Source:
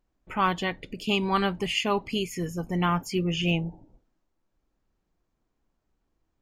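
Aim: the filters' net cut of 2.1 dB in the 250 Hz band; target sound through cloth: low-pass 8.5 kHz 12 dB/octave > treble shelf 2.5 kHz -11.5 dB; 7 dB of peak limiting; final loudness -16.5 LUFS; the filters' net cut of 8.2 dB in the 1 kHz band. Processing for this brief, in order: peaking EQ 250 Hz -3 dB; peaking EQ 1 kHz -8 dB; peak limiter -20.5 dBFS; low-pass 8.5 kHz 12 dB/octave; treble shelf 2.5 kHz -11.5 dB; trim +17 dB

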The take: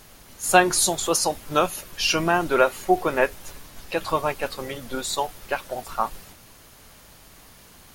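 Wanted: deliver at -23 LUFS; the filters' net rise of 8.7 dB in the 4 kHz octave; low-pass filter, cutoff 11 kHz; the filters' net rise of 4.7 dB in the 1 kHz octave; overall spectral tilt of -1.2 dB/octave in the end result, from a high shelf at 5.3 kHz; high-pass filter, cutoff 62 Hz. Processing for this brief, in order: high-pass 62 Hz; low-pass 11 kHz; peaking EQ 1 kHz +6 dB; peaking EQ 4 kHz +8 dB; treble shelf 5.3 kHz +6.5 dB; trim -4 dB

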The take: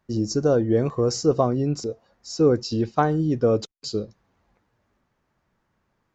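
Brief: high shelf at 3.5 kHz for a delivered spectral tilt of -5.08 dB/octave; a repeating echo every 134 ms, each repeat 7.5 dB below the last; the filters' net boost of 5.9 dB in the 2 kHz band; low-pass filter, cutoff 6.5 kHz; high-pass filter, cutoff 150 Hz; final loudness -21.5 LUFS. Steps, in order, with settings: high-pass 150 Hz; low-pass 6.5 kHz; peaking EQ 2 kHz +7 dB; treble shelf 3.5 kHz +7.5 dB; feedback delay 134 ms, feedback 42%, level -7.5 dB; trim +0.5 dB

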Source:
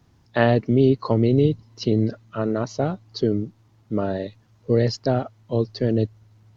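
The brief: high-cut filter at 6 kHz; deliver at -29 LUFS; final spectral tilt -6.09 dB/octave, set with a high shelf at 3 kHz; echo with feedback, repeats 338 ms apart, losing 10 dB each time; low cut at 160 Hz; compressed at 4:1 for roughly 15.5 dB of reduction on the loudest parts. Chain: high-pass 160 Hz; low-pass 6 kHz; treble shelf 3 kHz -8 dB; compression 4:1, threshold -33 dBFS; feedback delay 338 ms, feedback 32%, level -10 dB; trim +8 dB

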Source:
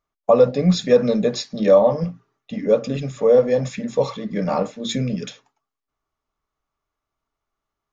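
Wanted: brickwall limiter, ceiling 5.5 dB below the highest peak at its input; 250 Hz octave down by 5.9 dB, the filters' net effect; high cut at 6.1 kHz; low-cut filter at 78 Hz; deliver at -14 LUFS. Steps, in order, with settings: high-pass 78 Hz; low-pass 6.1 kHz; peaking EQ 250 Hz -8 dB; trim +9.5 dB; peak limiter -1 dBFS

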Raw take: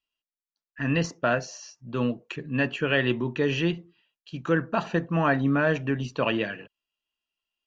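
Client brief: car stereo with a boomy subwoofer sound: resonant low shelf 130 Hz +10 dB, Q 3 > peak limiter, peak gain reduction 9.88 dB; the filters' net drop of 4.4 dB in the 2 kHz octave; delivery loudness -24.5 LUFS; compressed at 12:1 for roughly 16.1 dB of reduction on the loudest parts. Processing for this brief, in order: peaking EQ 2 kHz -6 dB; compression 12:1, threshold -36 dBFS; resonant low shelf 130 Hz +10 dB, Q 3; trim +20.5 dB; peak limiter -15 dBFS

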